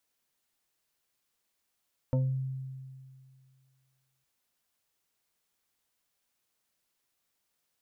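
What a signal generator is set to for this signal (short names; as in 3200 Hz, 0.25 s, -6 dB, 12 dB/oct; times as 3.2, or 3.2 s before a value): FM tone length 2.11 s, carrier 132 Hz, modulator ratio 2.93, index 1, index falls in 0.39 s exponential, decay 2.16 s, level -22.5 dB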